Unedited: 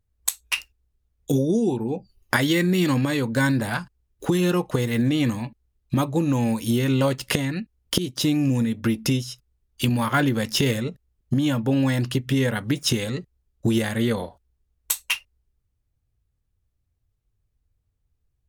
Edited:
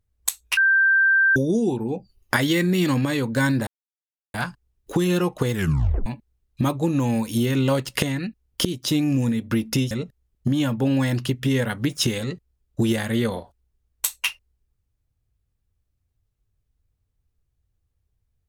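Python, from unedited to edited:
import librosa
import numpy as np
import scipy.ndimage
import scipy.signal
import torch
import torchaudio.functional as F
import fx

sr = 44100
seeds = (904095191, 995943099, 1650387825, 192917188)

y = fx.edit(x, sr, fx.bleep(start_s=0.57, length_s=0.79, hz=1570.0, db=-14.0),
    fx.insert_silence(at_s=3.67, length_s=0.67),
    fx.tape_stop(start_s=4.85, length_s=0.54),
    fx.cut(start_s=9.24, length_s=1.53), tone=tone)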